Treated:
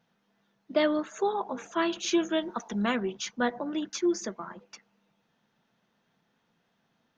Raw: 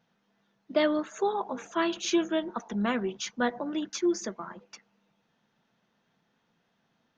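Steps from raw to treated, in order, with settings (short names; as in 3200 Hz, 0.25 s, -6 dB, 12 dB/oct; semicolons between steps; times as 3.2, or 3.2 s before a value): 2.23–2.96 high shelf 3300 Hz +7.5 dB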